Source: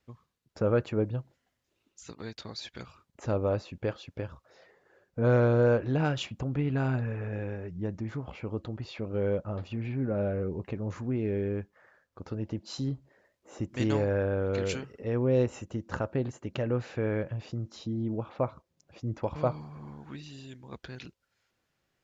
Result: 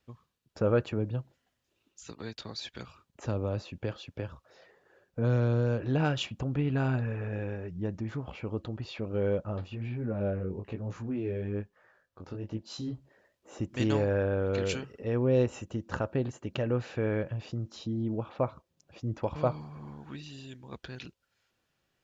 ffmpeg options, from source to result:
-filter_complex "[0:a]asettb=1/sr,asplit=3[s0][s1][s2];[s0]atrim=end=0.924[s3];[s1]atrim=start=0.92:end=5.81,asetpts=PTS-STARTPTS,afade=t=in:d=0.004:c=qsin,afade=t=out:st=4.886:d=0.004:c=qsin,acrossover=split=240|3000[s4][s5][s6];[s5]acompressor=threshold=0.0282:ratio=6:attack=3.2:release=140:knee=2.83:detection=peak[s7];[s4][s7][s6]amix=inputs=3:normalize=0[s8];[s2]atrim=start=5.806[s9];[s3][s8]acrossfade=d=0.004:c1=hsin:c2=qsin[s10];[s10][s9]acrossfade=d=0.004:c1=qsin:c2=hsin,asplit=3[s11][s12][s13];[s11]afade=t=out:st=9.61:d=0.02[s14];[s12]flanger=delay=17:depth=4.8:speed=1.1,afade=t=in:st=9.61:d=0.02,afade=t=out:st=12.92:d=0.02[s15];[s13]afade=t=in:st=12.92:d=0.02[s16];[s14][s15][s16]amix=inputs=3:normalize=0,equalizer=f=3000:t=o:w=0.77:g=2.5,bandreject=f=2100:w=17"

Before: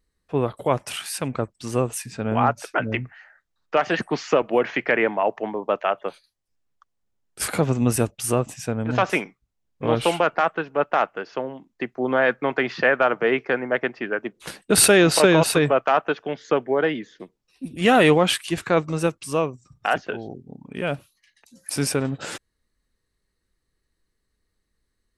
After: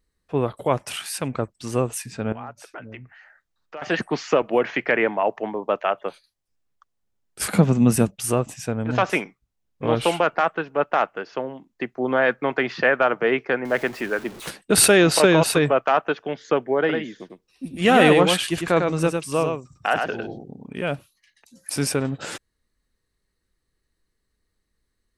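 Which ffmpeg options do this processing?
-filter_complex "[0:a]asettb=1/sr,asplit=3[s0][s1][s2];[s0]atrim=end=2.324[s3];[s1]atrim=start=2.32:end=3.82,asetpts=PTS-STARTPTS,afade=t=in:d=0.004:c=qsin,afade=t=out:st=1.496:d=0.004:c=qsin,acompressor=threshold=0.00501:ratio=2:attack=3.2:release=140:knee=1:detection=peak[s4];[s2]atrim=start=3.816[s5];[s3][s4]acrossfade=d=0.004:c1=hsin:c2=qsin[s6];[s6][s5]acrossfade=d=0.004:c1=qsin:c2=hsin,asettb=1/sr,asplit=3[s7][s8][s9];[s7]atrim=end=7.484[s10];[s8]atrim=start=7.48:end=8.16,asetpts=PTS-STARTPTS,afade=t=in:d=0.004:c=qsin,afade=t=out:st=0.676:d=0.004:c=qsin,equalizer=f=190:t=o:w=0.51:g=13.5[s11];[s9]atrim=start=8.156[s12];[s10][s11]acrossfade=d=0.004:c1=hsin:c2=qsin[s13];[s13][s12]acrossfade=d=0.004:c1=qsin:c2=hsin,asettb=1/sr,asplit=3[s14][s15][s16];[s14]atrim=end=13.654[s17];[s15]atrim=start=13.65:end=14.5,asetpts=PTS-STARTPTS,afade=t=in:d=0.004:c=qsin,afade=t=out:st=0.846:d=0.004:c=qsin,aeval=exprs='val(0)+0.5*0.0178*sgn(val(0))':c=same[s18];[s16]atrim=start=14.496[s19];[s17][s18]acrossfade=d=0.004:c1=hsin:c2=qsin[s20];[s20][s19]acrossfade=d=0.004:c1=qsin:c2=hsin,asettb=1/sr,asplit=3[s21][s22][s23];[s21]atrim=end=16.794[s24];[s22]atrim=start=16.79:end=20.74,asetpts=PTS-STARTPTS,afade=t=in:d=0.004:c=qsin,afade=t=out:st=3.946:d=0.004:c=qsin,aecho=1:1:101:0.596,atrim=end_sample=174195[s25];[s23]atrim=start=20.736[s26];[s24][s25]acrossfade=d=0.004:c1=hsin:c2=qsin[s27];[s27][s26]acrossfade=d=0.004:c1=qsin:c2=hsin"

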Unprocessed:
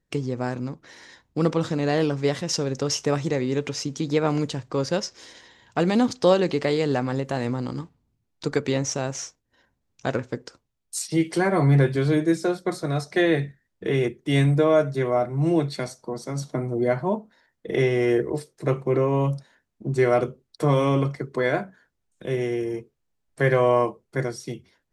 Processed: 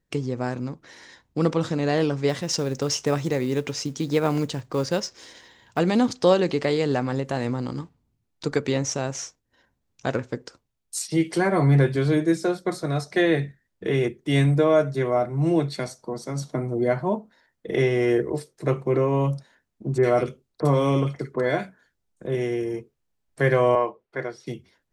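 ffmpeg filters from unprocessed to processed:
-filter_complex "[0:a]asettb=1/sr,asplit=3[s0][s1][s2];[s0]atrim=end=2.294[s3];[s1]atrim=start=2.29:end=5.79,asetpts=PTS-STARTPTS,afade=t=in:d=0.004:c=qsin,afade=t=out:st=3.496:d=0.004:c=qsin,acrusher=bits=7:mode=log:mix=0:aa=0.000001[s4];[s2]atrim=start=5.786[s5];[s3][s4]acrossfade=d=0.004:c1=hsin:c2=qsin[s6];[s6][s5]acrossfade=d=0.004:c1=qsin:c2=hsin,asettb=1/sr,asplit=3[s7][s8][s9];[s7]atrim=end=19.984[s10];[s8]atrim=start=19.98:end=22.35,asetpts=PTS-STARTPTS,afade=t=in:d=0.004:c=qsin,afade=t=out:st=2.366:d=0.004:c=qsin,acrossover=split=1800[s11][s12];[s12]adelay=50[s13];[s11][s13]amix=inputs=2:normalize=0,atrim=end_sample=104517[s14];[s9]atrim=start=22.346[s15];[s10][s14]acrossfade=d=0.004:c1=hsin:c2=qsin[s16];[s16][s15]acrossfade=d=0.004:c1=qsin:c2=hsin,asettb=1/sr,asplit=3[s17][s18][s19];[s17]atrim=end=23.754[s20];[s18]atrim=start=23.75:end=24.47,asetpts=PTS-STARTPTS,afade=t=in:d=0.004:c=qsin,afade=t=out:st=0.716:d=0.004:c=qsin,acrossover=split=370 4000:gain=0.251 1 0.1[s21][s22][s23];[s21][s22][s23]amix=inputs=3:normalize=0[s24];[s19]atrim=start=24.466[s25];[s20][s24]acrossfade=d=0.004:c1=hsin:c2=qsin[s26];[s26][s25]acrossfade=d=0.004:c1=qsin:c2=hsin"

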